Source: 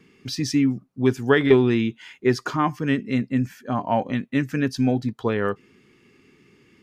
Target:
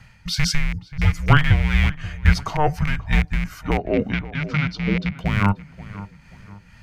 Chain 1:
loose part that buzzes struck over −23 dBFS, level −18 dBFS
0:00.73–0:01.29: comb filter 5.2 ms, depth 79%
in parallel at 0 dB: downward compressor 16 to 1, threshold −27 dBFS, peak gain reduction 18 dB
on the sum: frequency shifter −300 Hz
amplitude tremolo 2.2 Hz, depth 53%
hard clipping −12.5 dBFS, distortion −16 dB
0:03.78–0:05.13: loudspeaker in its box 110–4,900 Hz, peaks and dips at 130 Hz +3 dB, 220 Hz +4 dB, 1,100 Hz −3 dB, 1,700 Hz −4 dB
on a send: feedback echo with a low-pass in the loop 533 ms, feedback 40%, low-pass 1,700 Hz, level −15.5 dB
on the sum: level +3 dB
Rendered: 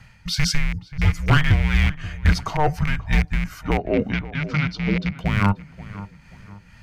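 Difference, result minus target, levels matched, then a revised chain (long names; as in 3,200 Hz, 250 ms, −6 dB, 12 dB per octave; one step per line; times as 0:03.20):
hard clipping: distortion +24 dB
loose part that buzzes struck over −23 dBFS, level −18 dBFS
0:00.73–0:01.29: comb filter 5.2 ms, depth 79%
in parallel at 0 dB: downward compressor 16 to 1, threshold −27 dBFS, peak gain reduction 18 dB
on the sum: frequency shifter −300 Hz
amplitude tremolo 2.2 Hz, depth 53%
hard clipping −5 dBFS, distortion −40 dB
0:03.78–0:05.13: loudspeaker in its box 110–4,900 Hz, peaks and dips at 130 Hz +3 dB, 220 Hz +4 dB, 1,100 Hz −3 dB, 1,700 Hz −4 dB
on a send: feedback echo with a low-pass in the loop 533 ms, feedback 40%, low-pass 1,700 Hz, level −15.5 dB
on the sum: level +3 dB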